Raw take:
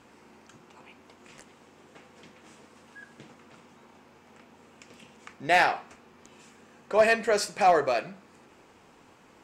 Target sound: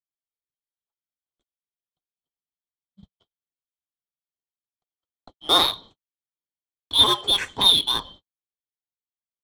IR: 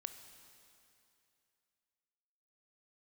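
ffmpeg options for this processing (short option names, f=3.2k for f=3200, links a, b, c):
-filter_complex "[0:a]afftfilt=real='real(if(lt(b,272),68*(eq(floor(b/68),0)*1+eq(floor(b/68),1)*3+eq(floor(b/68),2)*0+eq(floor(b/68),3)*2)+mod(b,68),b),0)':imag='imag(if(lt(b,272),68*(eq(floor(b/68),0)*1+eq(floor(b/68),1)*3+eq(floor(b/68),2)*0+eq(floor(b/68),3)*2)+mod(b,68),b),0)':win_size=2048:overlap=0.75,agate=range=-54dB:threshold=-44dB:ratio=16:detection=peak,acrossover=split=540|1700[a][b][c];[a]acompressor=threshold=-41dB:ratio=8[d];[d][b][c]amix=inputs=3:normalize=0,aemphasis=mode=reproduction:type=50fm,asplit=2[e][f];[f]adynamicsmooth=sensitivity=5:basefreq=890,volume=2dB[g];[e][g]amix=inputs=2:normalize=0,aphaser=in_gain=1:out_gain=1:delay=2.8:decay=0.27:speed=1.7:type=sinusoidal"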